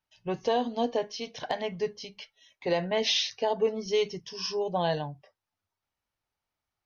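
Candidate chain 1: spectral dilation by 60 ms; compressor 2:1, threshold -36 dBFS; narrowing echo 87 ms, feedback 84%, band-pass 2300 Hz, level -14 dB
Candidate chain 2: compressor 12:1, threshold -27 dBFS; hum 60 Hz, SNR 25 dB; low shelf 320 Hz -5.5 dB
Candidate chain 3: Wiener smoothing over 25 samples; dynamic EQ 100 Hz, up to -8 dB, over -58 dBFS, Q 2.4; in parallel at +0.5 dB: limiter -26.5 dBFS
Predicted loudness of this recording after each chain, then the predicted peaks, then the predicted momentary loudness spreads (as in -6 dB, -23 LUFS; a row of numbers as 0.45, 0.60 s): -34.0, -35.0, -27.5 LUFS; -18.0, -17.0, -12.5 dBFS; 9, 12, 10 LU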